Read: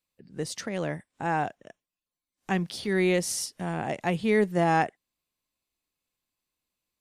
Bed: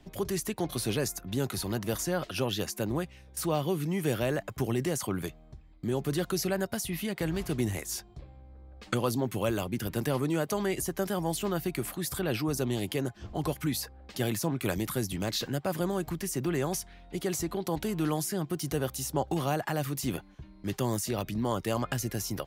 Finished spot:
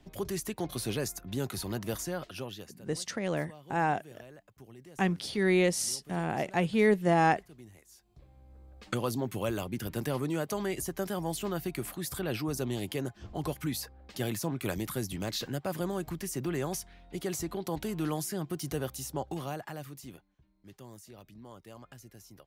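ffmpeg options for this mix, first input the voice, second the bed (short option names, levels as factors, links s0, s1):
-filter_complex "[0:a]adelay=2500,volume=0.891[s0];[1:a]volume=6.31,afade=t=out:st=1.9:d=0.91:silence=0.112202,afade=t=in:st=8.01:d=0.55:silence=0.112202,afade=t=out:st=18.72:d=1.54:silence=0.149624[s1];[s0][s1]amix=inputs=2:normalize=0"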